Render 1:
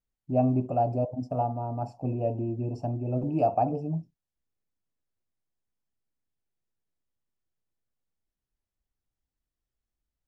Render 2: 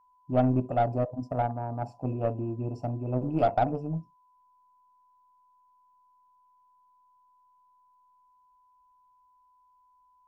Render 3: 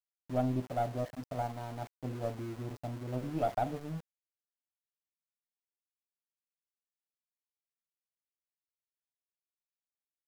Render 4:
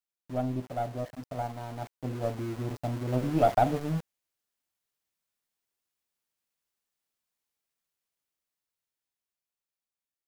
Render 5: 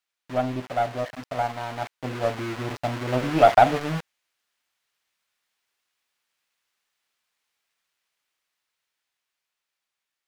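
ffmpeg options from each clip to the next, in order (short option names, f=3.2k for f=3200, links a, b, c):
-af "aeval=exprs='val(0)+0.00112*sin(2*PI*1000*n/s)':c=same,aeval=exprs='0.224*(cos(1*acos(clip(val(0)/0.224,-1,1)))-cos(1*PI/2))+0.0398*(cos(2*acos(clip(val(0)/0.224,-1,1)))-cos(2*PI/2))+0.00794*(cos(7*acos(clip(val(0)/0.224,-1,1)))-cos(7*PI/2))':c=same"
-af "aeval=exprs='val(0)*gte(abs(val(0)),0.0133)':c=same,volume=-7.5dB"
-af "dynaudnorm=f=560:g=9:m=9.5dB"
-af "equalizer=f=2.1k:w=0.3:g=14"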